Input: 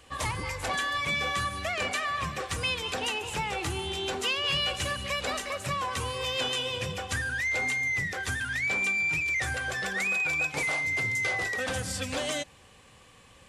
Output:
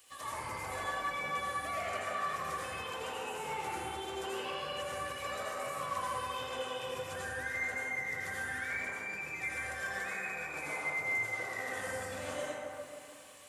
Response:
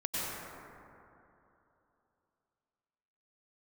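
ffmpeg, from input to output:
-filter_complex "[0:a]aemphasis=mode=production:type=riaa,acrossover=split=1500[link_01][link_02];[link_02]acompressor=threshold=-41dB:ratio=10[link_03];[link_01][link_03]amix=inputs=2:normalize=0[link_04];[1:a]atrim=start_sample=2205,asetrate=52920,aresample=44100[link_05];[link_04][link_05]afir=irnorm=-1:irlink=0,volume=-8dB"

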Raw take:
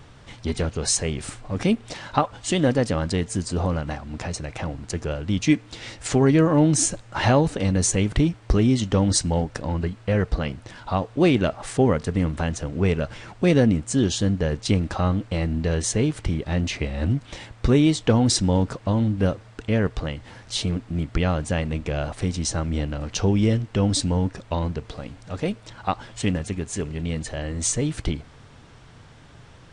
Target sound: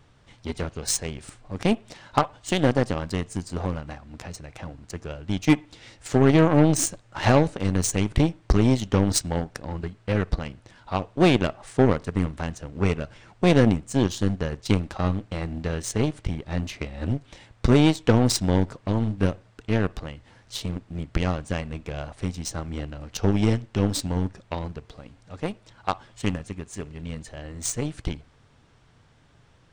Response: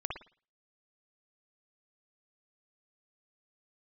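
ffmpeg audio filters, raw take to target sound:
-filter_complex "[0:a]aeval=exprs='0.562*(cos(1*acos(clip(val(0)/0.562,-1,1)))-cos(1*PI/2))+0.0562*(cos(7*acos(clip(val(0)/0.562,-1,1)))-cos(7*PI/2))+0.00794*(cos(8*acos(clip(val(0)/0.562,-1,1)))-cos(8*PI/2))':channel_layout=same,asplit=2[link_01][link_02];[1:a]atrim=start_sample=2205[link_03];[link_02][link_03]afir=irnorm=-1:irlink=0,volume=-23.5dB[link_04];[link_01][link_04]amix=inputs=2:normalize=0"

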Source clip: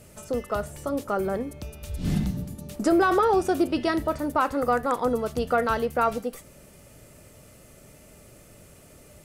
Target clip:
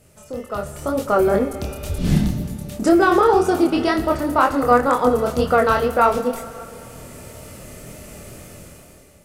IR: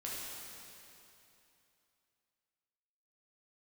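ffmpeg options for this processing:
-filter_complex "[0:a]dynaudnorm=framelen=170:gausssize=9:maxgain=15dB,flanger=delay=22.5:depth=6.4:speed=2,asplit=2[link_01][link_02];[1:a]atrim=start_sample=2205,adelay=24[link_03];[link_02][link_03]afir=irnorm=-1:irlink=0,volume=-12.5dB[link_04];[link_01][link_04]amix=inputs=2:normalize=0"

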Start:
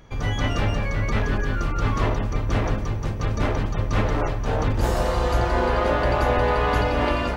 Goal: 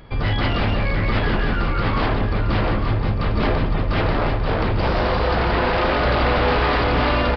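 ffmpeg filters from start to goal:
ffmpeg -i in.wav -af "acontrast=34,aresample=16000,aeval=exprs='0.2*(abs(mod(val(0)/0.2+3,4)-2)-1)':channel_layout=same,aresample=44100,aresample=11025,aresample=44100,aecho=1:1:850:0.376" out.wav

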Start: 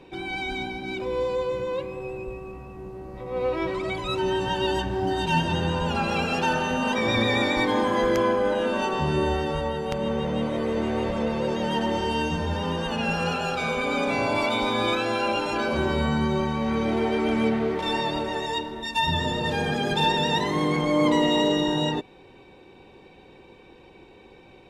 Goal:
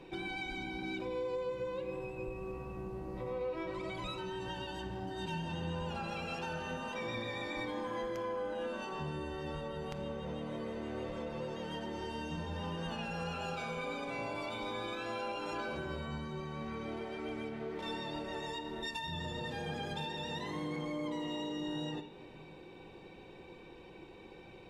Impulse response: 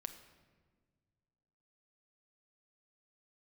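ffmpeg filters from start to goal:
-filter_complex "[0:a]acompressor=threshold=-33dB:ratio=12[link_01];[1:a]atrim=start_sample=2205[link_02];[link_01][link_02]afir=irnorm=-1:irlink=0"

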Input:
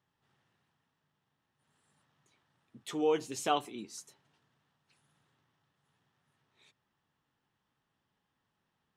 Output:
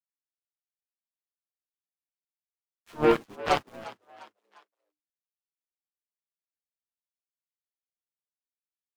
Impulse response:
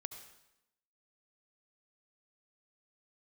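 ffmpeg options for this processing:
-filter_complex "[0:a]highpass=45,afftdn=noise_reduction=23:noise_floor=-59,lowpass=2700,acontrast=84,aeval=exprs='val(0)*gte(abs(val(0)),0.0178)':channel_layout=same,flanger=delay=7.4:depth=4.1:regen=-9:speed=1.1:shape=triangular,aeval=exprs='0.237*(cos(1*acos(clip(val(0)/0.237,-1,1)))-cos(1*PI/2))+0.0473*(cos(7*acos(clip(val(0)/0.237,-1,1)))-cos(7*PI/2))':channel_layout=same,asplit=3[link_01][link_02][link_03];[link_02]asetrate=22050,aresample=44100,atempo=2,volume=-10dB[link_04];[link_03]asetrate=33038,aresample=44100,atempo=1.33484,volume=-4dB[link_05];[link_01][link_04][link_05]amix=inputs=3:normalize=0,asplit=4[link_06][link_07][link_08][link_09];[link_07]adelay=351,afreqshift=100,volume=-18dB[link_10];[link_08]adelay=702,afreqshift=200,volume=-25.7dB[link_11];[link_09]adelay=1053,afreqshift=300,volume=-33.5dB[link_12];[link_06][link_10][link_11][link_12]amix=inputs=4:normalize=0"

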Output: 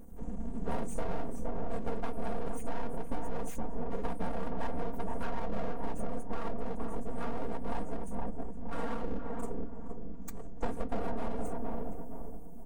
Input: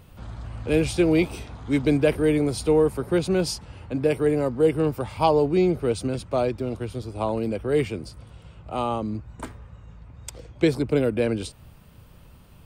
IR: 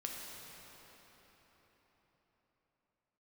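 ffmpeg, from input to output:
-filter_complex "[0:a]afftfilt=real='re*(1-between(b*sr/4096,860,6000))':imag='im*(1-between(b*sr/4096,860,6000))':win_size=4096:overlap=0.75,afftfilt=real='hypot(re,im)*cos(2*PI*random(0))':imag='hypot(re,im)*sin(2*PI*random(1))':win_size=512:overlap=0.75,acrossover=split=420[link_01][link_02];[link_02]acompressor=threshold=-39dB:ratio=2[link_03];[link_01][link_03]amix=inputs=2:normalize=0,lowshelf=frequency=440:gain=5,aeval=exprs='abs(val(0))':channel_layout=same,aecho=1:1:4.3:0.82,asplit=2[link_04][link_05];[link_05]adelay=467,lowpass=frequency=1000:poles=1,volume=-4dB,asplit=2[link_06][link_07];[link_07]adelay=467,lowpass=frequency=1000:poles=1,volume=0.34,asplit=2[link_08][link_09];[link_09]adelay=467,lowpass=frequency=1000:poles=1,volume=0.34,asplit=2[link_10][link_11];[link_11]adelay=467,lowpass=frequency=1000:poles=1,volume=0.34[link_12];[link_04][link_06][link_08][link_10][link_12]amix=inputs=5:normalize=0,asoftclip=type=tanh:threshold=-12dB,flanger=delay=3.6:depth=5.5:regen=-70:speed=0.22:shape=sinusoidal,acompressor=threshold=-29dB:ratio=6,volume=4dB"

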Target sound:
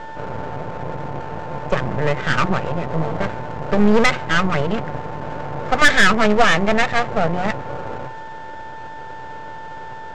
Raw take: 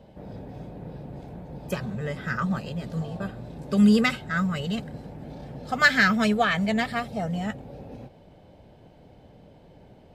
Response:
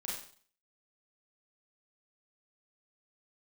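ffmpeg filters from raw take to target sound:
-filter_complex "[0:a]highshelf=frequency=3600:gain=-8.5,bandreject=frequency=60:width_type=h:width=6,bandreject=frequency=120:width_type=h:width=6,bandreject=frequency=180:width_type=h:width=6,aeval=exprs='val(0)+0.00501*sin(2*PI*890*n/s)':channel_layout=same,equalizer=frequency=125:width_type=o:width=1:gain=9,equalizer=frequency=250:width_type=o:width=1:gain=-4,equalizer=frequency=500:width_type=o:width=1:gain=11,equalizer=frequency=1000:width_type=o:width=1:gain=8,equalizer=frequency=2000:width_type=o:width=1:gain=11,equalizer=frequency=4000:width_type=o:width=1:gain=-9,aresample=16000,aeval=exprs='max(val(0),0)':channel_layout=same,aresample=44100,acontrast=71,asplit=2[link_01][link_02];[link_02]asoftclip=type=tanh:threshold=-10dB,volume=-9dB[link_03];[link_01][link_03]amix=inputs=2:normalize=0,volume=-2dB"

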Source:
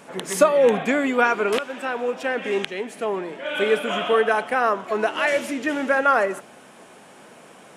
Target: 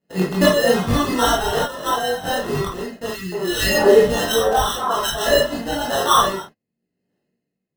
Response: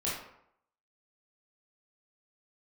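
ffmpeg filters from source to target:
-filter_complex "[0:a]lowpass=4300,agate=range=-34dB:threshold=-37dB:ratio=16:detection=peak,aphaser=in_gain=1:out_gain=1:delay=1.6:decay=0.77:speed=0.28:type=triangular,adynamicsmooth=sensitivity=7:basefreq=510,acrusher=samples=19:mix=1:aa=0.000001,asettb=1/sr,asplit=3[link_01][link_02][link_03];[link_01]atrim=end=3.084[link_04];[link_02]atrim=start=3.08:end=5.26,asetpts=PTS-STARTPTS,afade=type=in:duration=0.004:curve=qsin,afade=type=out:start_time=2.176:duration=0.004:curve=qsin,acrossover=split=240|1500[link_05][link_06][link_07];[link_05]adelay=50[link_08];[link_06]adelay=240[link_09];[link_08][link_09][link_07]amix=inputs=3:normalize=0,atrim=end_sample=96138[link_10];[link_03]atrim=start=5.256[link_11];[link_04][link_10]acrossfade=duration=0.004:curve1=hsin:curve2=qsin[link_12];[link_12][link_11]acrossfade=duration=0.004:curve1=qsin:curve2=hsin[link_13];[1:a]atrim=start_sample=2205,atrim=end_sample=3969[link_14];[link_13][link_14]afir=irnorm=-1:irlink=0,volume=-3dB"

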